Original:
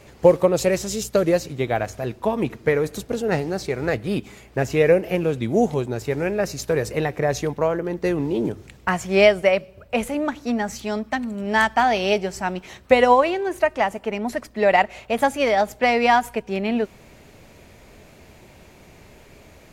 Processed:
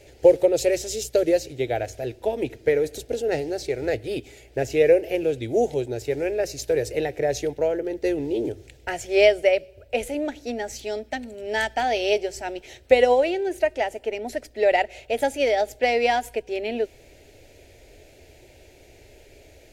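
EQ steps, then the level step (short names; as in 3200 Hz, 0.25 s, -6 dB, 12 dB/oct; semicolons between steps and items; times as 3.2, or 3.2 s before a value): high shelf 10000 Hz -4 dB; fixed phaser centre 460 Hz, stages 4; 0.0 dB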